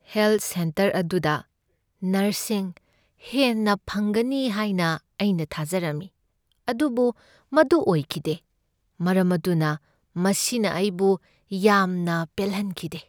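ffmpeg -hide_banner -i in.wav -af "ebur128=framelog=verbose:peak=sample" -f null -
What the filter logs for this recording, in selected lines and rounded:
Integrated loudness:
  I:         -23.9 LUFS
  Threshold: -34.3 LUFS
Loudness range:
  LRA:         2.5 LU
  Threshold: -44.7 LUFS
  LRA low:   -25.9 LUFS
  LRA high:  -23.4 LUFS
Sample peak:
  Peak:       -6.1 dBFS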